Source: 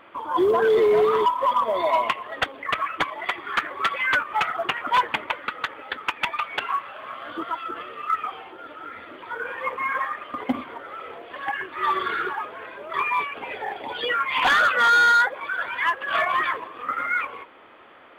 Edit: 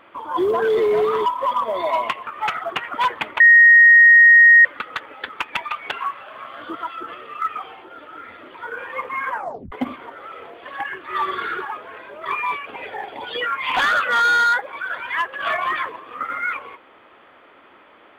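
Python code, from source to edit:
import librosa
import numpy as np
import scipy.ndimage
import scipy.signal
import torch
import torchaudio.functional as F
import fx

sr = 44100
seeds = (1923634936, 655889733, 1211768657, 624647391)

y = fx.edit(x, sr, fx.cut(start_s=2.27, length_s=1.93),
    fx.insert_tone(at_s=5.33, length_s=1.25, hz=1870.0, db=-6.0),
    fx.tape_stop(start_s=9.97, length_s=0.43), tone=tone)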